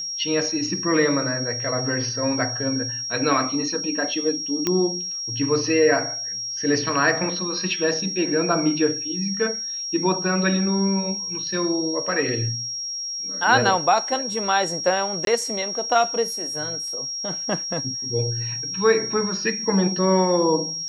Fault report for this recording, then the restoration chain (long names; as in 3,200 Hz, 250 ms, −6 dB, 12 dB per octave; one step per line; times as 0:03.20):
whistle 5,600 Hz −27 dBFS
0:04.67: click −7 dBFS
0:15.25–0:15.27: drop-out 22 ms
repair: click removal
notch filter 5,600 Hz, Q 30
repair the gap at 0:15.25, 22 ms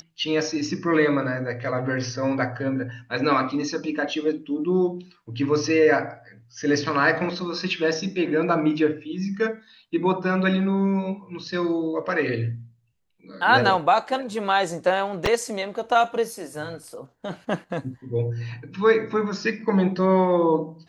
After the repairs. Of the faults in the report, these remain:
none of them is left